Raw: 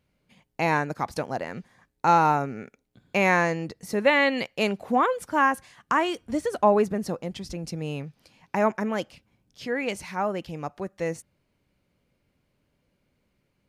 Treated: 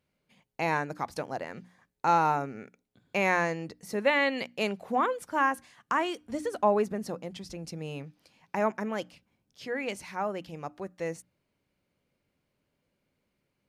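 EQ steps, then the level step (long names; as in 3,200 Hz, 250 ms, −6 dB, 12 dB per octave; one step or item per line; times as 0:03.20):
low-shelf EQ 88 Hz −8 dB
mains-hum notches 60/120/180/240/300 Hz
−4.5 dB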